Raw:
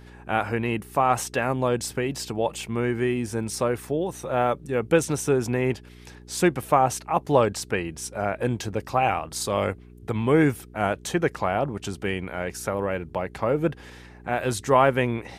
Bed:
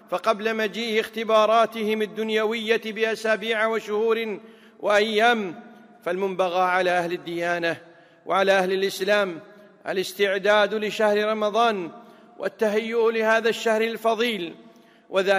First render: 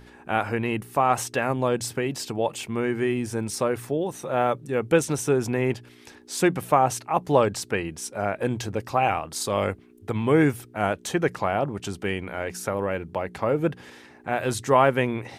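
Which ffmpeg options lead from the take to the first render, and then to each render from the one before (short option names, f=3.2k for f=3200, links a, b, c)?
-af "bandreject=f=60:t=h:w=4,bandreject=f=120:t=h:w=4,bandreject=f=180:t=h:w=4"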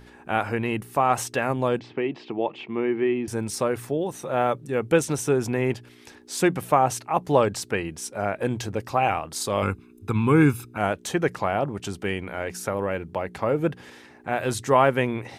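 -filter_complex "[0:a]asettb=1/sr,asplit=3[a][b][c];[a]atrim=end=1.794[d];[b]atrim=start=1.79:end=3.28,asetpts=PTS-STARTPTS,afade=t=in:d=0.004:c=qsin,afade=t=out:st=1.486:d=0.004:c=qsin,highpass=200,equalizer=f=340:t=q:w=4:g=5,equalizer=f=540:t=q:w=4:g=-4,equalizer=f=1.5k:t=q:w=4:g=-8,lowpass=f=3.1k:w=0.5412,lowpass=f=3.1k:w=1.3066[e];[c]atrim=start=3.276[f];[d][e]acrossfade=d=0.004:c1=hsin:c2=qsin[g];[g][f]acrossfade=d=0.004:c1=qsin:c2=hsin,asettb=1/sr,asplit=3[h][i][j];[h]atrim=end=9.624[k];[i]atrim=start=9.62:end=10.78,asetpts=PTS-STARTPTS,afade=t=in:d=0.004:c=qsin,afade=t=out:st=1.156:d=0.004:c=qsin,aecho=1:1:0.8:0.79,atrim=end_sample=51156[l];[j]atrim=start=10.776[m];[k][l]acrossfade=d=0.004:c1=hsin:c2=qsin[n];[n][m]acrossfade=d=0.004:c1=qsin:c2=hsin"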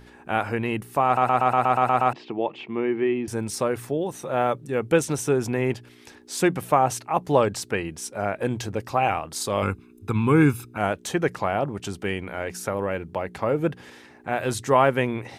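-filter_complex "[0:a]asplit=10[a][b][c][d][e][f][g][h][i][j];[a]atrim=end=1.172[k];[b]atrim=start=1.048:end=1.172[l];[c]atrim=start=1.048:end=1.172[m];[d]atrim=start=1.048:end=1.172[n];[e]atrim=start=1.048:end=1.172[o];[f]atrim=start=1.048:end=1.172[p];[g]atrim=start=1.048:end=1.172[q];[h]atrim=start=1.048:end=1.172[r];[i]atrim=start=1.048:end=1.172[s];[j]atrim=start=2.128[t];[k][l]acrossfade=d=0.004:c1=hsin:c2=hsin[u];[u][m]acrossfade=d=0.004:c1=hsin:c2=hsin[v];[v][n]acrossfade=d=0.004:c1=hsin:c2=hsin[w];[w][o]acrossfade=d=0.004:c1=hsin:c2=hsin[x];[x][p]acrossfade=d=0.004:c1=hsin:c2=hsin[y];[y][q]acrossfade=d=0.004:c1=hsin:c2=hsin[z];[z][r]acrossfade=d=0.004:c1=hsin:c2=hsin[aa];[aa][s]acrossfade=d=0.004:c1=hsin:c2=hsin[ab];[ab][t]acrossfade=d=0.004:c1=hsin:c2=hsin"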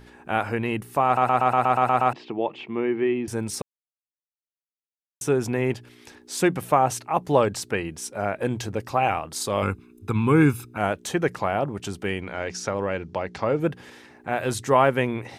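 -filter_complex "[0:a]asettb=1/sr,asplit=3[a][b][c];[a]atrim=end=12.224[d];[b]atrim=start=12.22:end=13.6,asetpts=PTS-STARTPTS,afade=t=in:d=0.004:c=qsin,afade=t=out:st=1.376:d=0.004:c=qsin,lowpass=f=5.6k:t=q:w=2.2[e];[c]atrim=start=13.596[f];[d][e]acrossfade=d=0.004:c1=hsin:c2=qsin[g];[g][f]acrossfade=d=0.004:c1=qsin:c2=hsin,asplit=3[h][i][j];[h]atrim=end=3.62,asetpts=PTS-STARTPTS,afade=t=out:st=3.616:d=0.004:c=hsin[k];[i]atrim=start=3.62:end=5.21,asetpts=PTS-STARTPTS,volume=0[l];[j]atrim=start=5.21,asetpts=PTS-STARTPTS,afade=t=in:d=0.004:c=hsin[m];[k][l][m]concat=n=3:v=0:a=1"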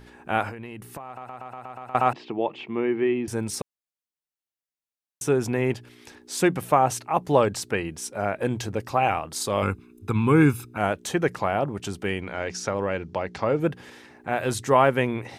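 -filter_complex "[0:a]asettb=1/sr,asplit=3[a][b][c];[a]atrim=end=0.494[d];[b]atrim=start=0.49:end=1.95,asetpts=PTS-STARTPTS,afade=t=in:d=0.004:c=qsin,afade=t=out:st=1.456:d=0.004:c=qsin,acompressor=threshold=-33dB:ratio=20:attack=3.2:release=140:knee=1:detection=peak[e];[c]atrim=start=1.946[f];[d][e]acrossfade=d=0.004:c1=hsin:c2=qsin[g];[g][f]acrossfade=d=0.004:c1=qsin:c2=hsin"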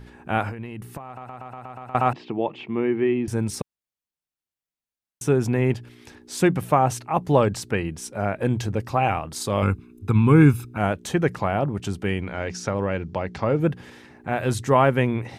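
-af "bass=f=250:g=7,treble=f=4k:g=-2"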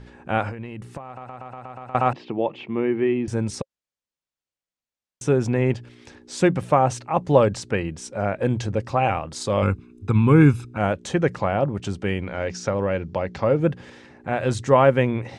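-af "lowpass=f=8.3k:w=0.5412,lowpass=f=8.3k:w=1.3066,equalizer=f=540:w=6.9:g=6.5"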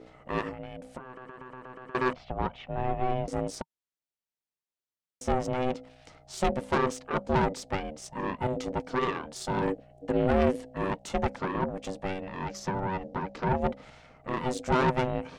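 -af "aeval=exprs='(tanh(7.94*val(0)+0.7)-tanh(0.7))/7.94':c=same,aeval=exprs='val(0)*sin(2*PI*380*n/s)':c=same"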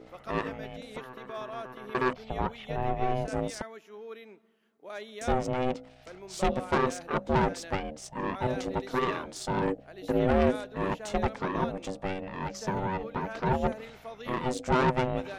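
-filter_complex "[1:a]volume=-21.5dB[a];[0:a][a]amix=inputs=2:normalize=0"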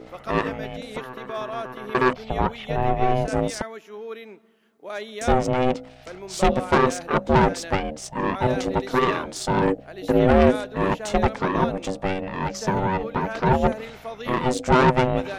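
-af "volume=8dB"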